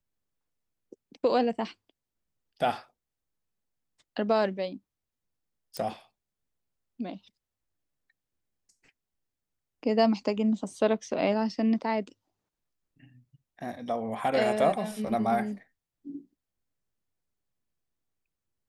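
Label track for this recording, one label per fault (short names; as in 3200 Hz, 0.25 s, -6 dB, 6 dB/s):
5.770000	5.770000	pop -20 dBFS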